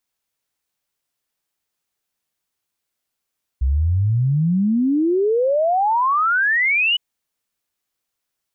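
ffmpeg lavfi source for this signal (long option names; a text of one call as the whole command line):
ffmpeg -f lavfi -i "aevalsrc='0.188*clip(min(t,3.36-t)/0.01,0,1)*sin(2*PI*62*3.36/log(3000/62)*(exp(log(3000/62)*t/3.36)-1))':duration=3.36:sample_rate=44100" out.wav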